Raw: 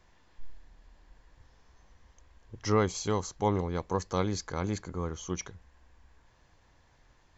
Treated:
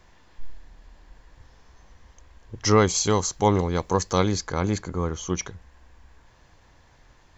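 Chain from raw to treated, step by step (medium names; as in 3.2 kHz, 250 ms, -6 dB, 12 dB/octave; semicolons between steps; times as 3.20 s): 2.64–4.32 s: treble shelf 4.1 kHz +8.5 dB; trim +7.5 dB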